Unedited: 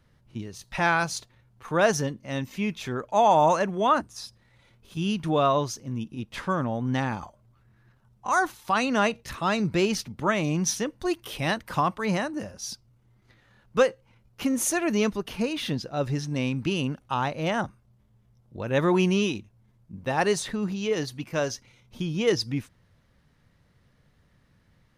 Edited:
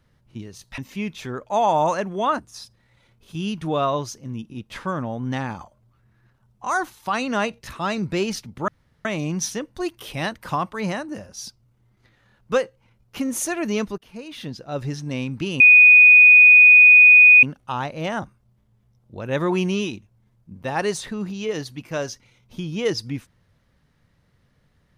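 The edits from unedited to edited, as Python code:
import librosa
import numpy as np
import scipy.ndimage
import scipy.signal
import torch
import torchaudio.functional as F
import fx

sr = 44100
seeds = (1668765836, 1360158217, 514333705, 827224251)

y = fx.edit(x, sr, fx.cut(start_s=0.78, length_s=1.62),
    fx.insert_room_tone(at_s=10.3, length_s=0.37),
    fx.fade_in_from(start_s=15.23, length_s=0.87, floor_db=-18.5),
    fx.insert_tone(at_s=16.85, length_s=1.83, hz=2480.0, db=-6.5), tone=tone)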